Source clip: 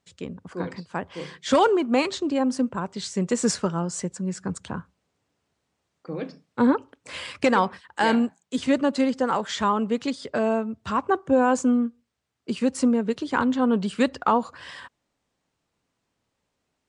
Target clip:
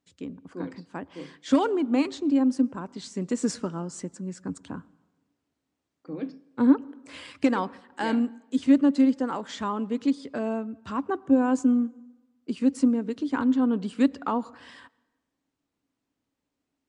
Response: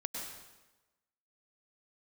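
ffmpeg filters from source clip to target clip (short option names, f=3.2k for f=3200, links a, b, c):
-filter_complex "[0:a]equalizer=f=280:w=3.6:g=13.5,asplit=2[a][b];[1:a]atrim=start_sample=2205,highshelf=f=5k:g=-9.5[c];[b][c]afir=irnorm=-1:irlink=0,volume=-21.5dB[d];[a][d]amix=inputs=2:normalize=0,volume=-8.5dB"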